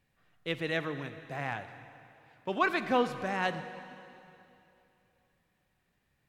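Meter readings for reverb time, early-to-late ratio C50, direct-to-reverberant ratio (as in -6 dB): 2.9 s, 10.5 dB, 10.5 dB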